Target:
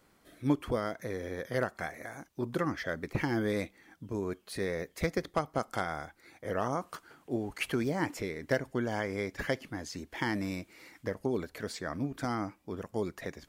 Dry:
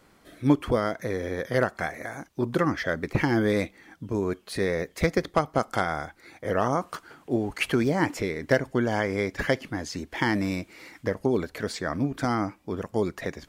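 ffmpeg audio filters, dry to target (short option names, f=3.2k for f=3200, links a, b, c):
-af "highshelf=f=9.3k:g=6,volume=-7.5dB"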